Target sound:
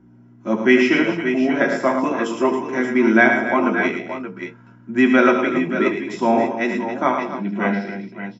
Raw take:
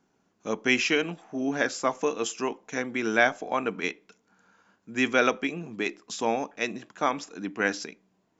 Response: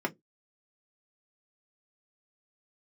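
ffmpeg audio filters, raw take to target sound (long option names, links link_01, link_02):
-filter_complex "[0:a]aeval=exprs='val(0)+0.00251*(sin(2*PI*60*n/s)+sin(2*PI*2*60*n/s)/2+sin(2*PI*3*60*n/s)/3+sin(2*PI*4*60*n/s)/4+sin(2*PI*5*60*n/s)/5)':channel_layout=same,asettb=1/sr,asplit=3[link_01][link_02][link_03];[link_01]atrim=end=7.114[link_04];[link_02]atrim=start=7.11:end=7.87,asetpts=PTS-STARTPTS,afade=type=in:duration=0.004:curve=qsin,afade=type=out:start_time=0.756:duration=0.004:curve=qsin,highpass=170,equalizer=frequency=190:width_type=q:width=4:gain=6,equalizer=frequency=290:width_type=q:width=4:gain=-10,equalizer=frequency=440:width_type=q:width=4:gain=-4,equalizer=frequency=630:width_type=q:width=4:gain=7,equalizer=frequency=1200:width_type=q:width=4:gain=-9,equalizer=frequency=1700:width_type=q:width=4:gain=-9,lowpass=frequency=4100:width=0.5412,lowpass=frequency=4100:width=1.3066[link_05];[link_03]atrim=start=7.866[link_06];[link_04][link_05]acrossfade=duration=0.004:curve1=hsin:curve2=qsin[link_07];[link_07][link_06]acrossfade=duration=0.004:curve1=qsin:curve2=hsin,aecho=1:1:74|109|188|274|574|585:0.316|0.447|0.15|0.266|0.282|0.224[link_08];[1:a]atrim=start_sample=2205[link_09];[link_08][link_09]afir=irnorm=-1:irlink=0,volume=-1dB"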